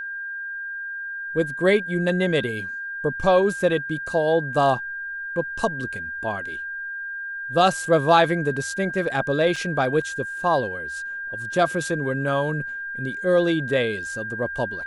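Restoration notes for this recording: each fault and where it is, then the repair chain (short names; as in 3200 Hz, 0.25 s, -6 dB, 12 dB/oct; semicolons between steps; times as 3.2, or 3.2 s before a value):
tone 1600 Hz -29 dBFS
9.56 gap 4.2 ms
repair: notch 1600 Hz, Q 30; interpolate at 9.56, 4.2 ms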